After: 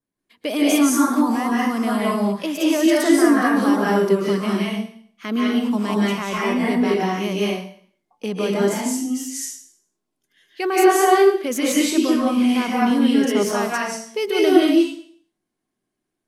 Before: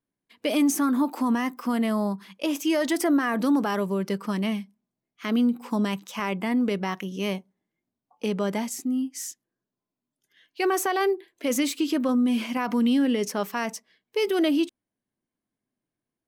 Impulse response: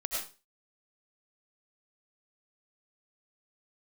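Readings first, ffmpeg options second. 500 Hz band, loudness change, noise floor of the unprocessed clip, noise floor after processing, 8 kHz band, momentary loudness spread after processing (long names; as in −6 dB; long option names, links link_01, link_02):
+8.5 dB, +6.5 dB, below −85 dBFS, −80 dBFS, +7.5 dB, 12 LU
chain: -filter_complex "[0:a]adynamicequalizer=threshold=0.00562:dfrequency=2800:dqfactor=2.1:tfrequency=2800:tqfactor=2.1:attack=5:release=100:ratio=0.375:range=2:mode=cutabove:tftype=bell[link_01];[1:a]atrim=start_sample=2205,asetrate=25137,aresample=44100[link_02];[link_01][link_02]afir=irnorm=-1:irlink=0,volume=-1dB"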